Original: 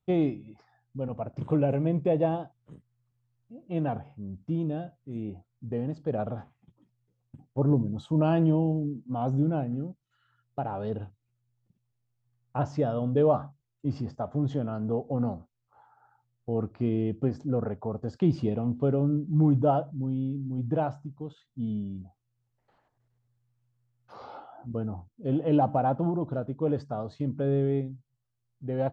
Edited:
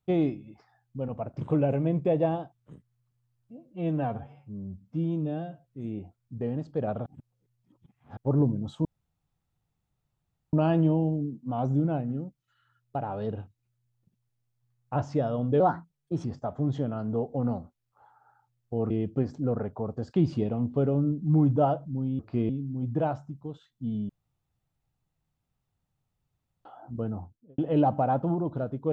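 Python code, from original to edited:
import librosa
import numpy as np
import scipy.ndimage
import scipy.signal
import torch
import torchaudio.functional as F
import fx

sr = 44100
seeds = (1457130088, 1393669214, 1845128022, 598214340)

y = fx.studio_fade_out(x, sr, start_s=24.96, length_s=0.38)
y = fx.edit(y, sr, fx.stretch_span(start_s=3.57, length_s=1.38, factor=1.5),
    fx.reverse_span(start_s=6.37, length_s=1.11),
    fx.insert_room_tone(at_s=8.16, length_s=1.68),
    fx.speed_span(start_s=13.23, length_s=0.77, speed=1.2),
    fx.move(start_s=16.66, length_s=0.3, to_s=20.25),
    fx.room_tone_fill(start_s=21.85, length_s=2.56), tone=tone)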